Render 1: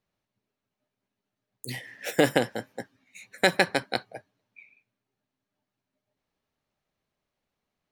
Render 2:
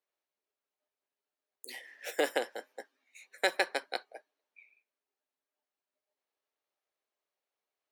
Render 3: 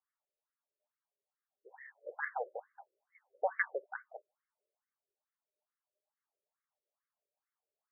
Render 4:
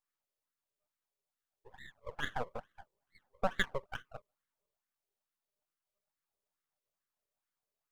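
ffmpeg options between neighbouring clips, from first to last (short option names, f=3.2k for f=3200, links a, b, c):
-af "highpass=f=370:w=0.5412,highpass=f=370:w=1.3066,volume=-7dB"
-af "afftfilt=real='re*between(b*sr/1024,430*pow(1600/430,0.5+0.5*sin(2*PI*2.3*pts/sr))/1.41,430*pow(1600/430,0.5+0.5*sin(2*PI*2.3*pts/sr))*1.41)':imag='im*between(b*sr/1024,430*pow(1600/430,0.5+0.5*sin(2*PI*2.3*pts/sr))/1.41,430*pow(1600/430,0.5+0.5*sin(2*PI*2.3*pts/sr))*1.41)':win_size=1024:overlap=0.75,volume=1dB"
-af "aeval=exprs='max(val(0),0)':c=same,volume=4.5dB"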